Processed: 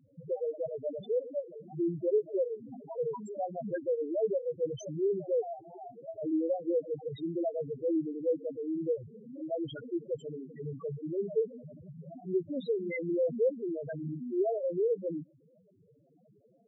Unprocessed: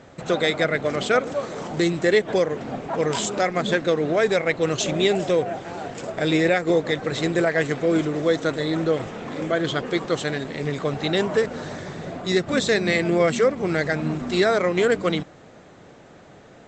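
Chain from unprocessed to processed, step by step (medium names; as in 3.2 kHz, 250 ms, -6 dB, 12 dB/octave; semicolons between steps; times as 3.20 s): loudest bins only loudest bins 2; trim -7 dB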